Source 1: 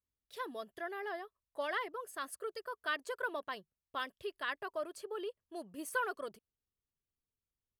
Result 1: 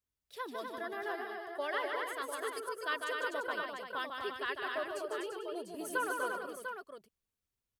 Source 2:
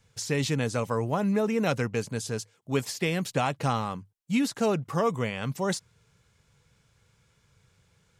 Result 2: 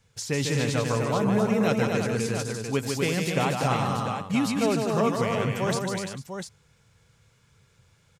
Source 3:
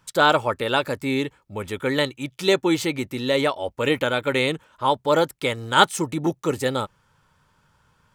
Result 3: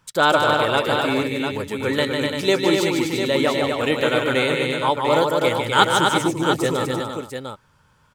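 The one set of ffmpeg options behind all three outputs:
-af "aecho=1:1:150|249|343|446|697:0.562|0.596|0.422|0.158|0.422"

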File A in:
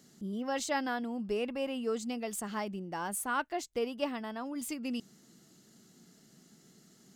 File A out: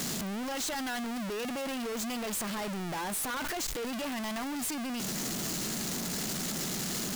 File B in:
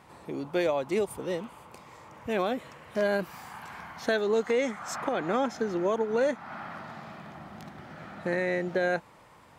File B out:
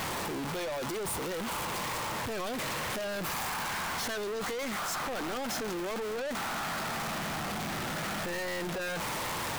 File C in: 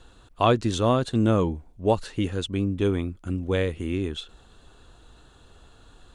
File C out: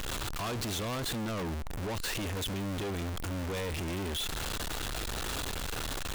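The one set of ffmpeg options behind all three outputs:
-af "aeval=exprs='val(0)+0.5*0.0708*sgn(val(0))':c=same,tiltshelf=f=860:g=-6,aeval=exprs='(tanh(44.7*val(0)+0.05)-tanh(0.05))/44.7':c=same"

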